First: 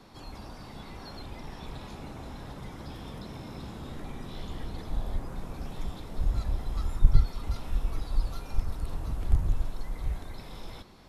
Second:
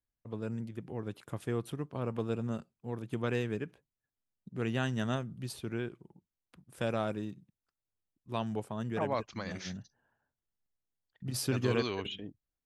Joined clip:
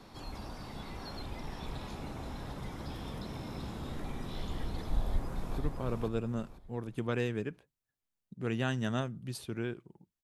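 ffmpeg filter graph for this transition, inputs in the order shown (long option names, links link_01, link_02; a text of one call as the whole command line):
ffmpeg -i cue0.wav -i cue1.wav -filter_complex "[0:a]apad=whole_dur=10.23,atrim=end=10.23,atrim=end=5.582[link_01];[1:a]atrim=start=1.728:end=6.38[link_02];[link_01][link_02]acrossfade=duration=0.004:curve1=hsin:curve2=hsin,asplit=2[link_03][link_04];[link_04]afade=type=in:start_time=5.01:duration=0.01,afade=type=out:start_time=5.58:duration=0.01,aecho=0:1:500|1000|1500|2000:0.668344|0.200503|0.060151|0.0180453[link_05];[link_03][link_05]amix=inputs=2:normalize=0" out.wav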